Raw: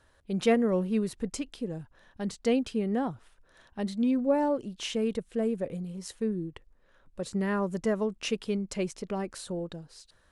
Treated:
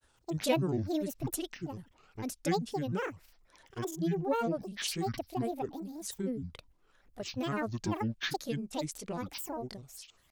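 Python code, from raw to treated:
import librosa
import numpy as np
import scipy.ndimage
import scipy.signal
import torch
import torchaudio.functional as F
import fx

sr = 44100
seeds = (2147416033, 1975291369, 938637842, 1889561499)

y = fx.high_shelf(x, sr, hz=3800.0, db=11.0)
y = fx.granulator(y, sr, seeds[0], grain_ms=100.0, per_s=20.0, spray_ms=23.0, spread_st=12)
y = F.gain(torch.from_numpy(y), -4.0).numpy()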